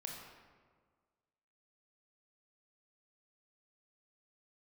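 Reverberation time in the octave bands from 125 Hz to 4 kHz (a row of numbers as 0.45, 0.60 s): 1.7, 1.7, 1.7, 1.6, 1.2, 0.90 s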